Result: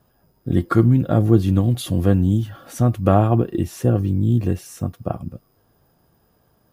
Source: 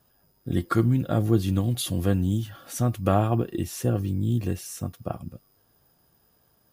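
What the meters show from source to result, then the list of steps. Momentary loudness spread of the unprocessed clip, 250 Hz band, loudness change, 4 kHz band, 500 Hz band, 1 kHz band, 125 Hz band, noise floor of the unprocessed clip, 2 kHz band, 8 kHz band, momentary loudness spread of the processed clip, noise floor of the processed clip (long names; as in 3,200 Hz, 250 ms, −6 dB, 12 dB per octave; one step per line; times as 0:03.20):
12 LU, +7.0 dB, +6.5 dB, −0.5 dB, +6.5 dB, +5.0 dB, +7.0 dB, −65 dBFS, +3.0 dB, −2.0 dB, 13 LU, −62 dBFS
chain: high-shelf EQ 2,000 Hz −9.5 dB
level +7 dB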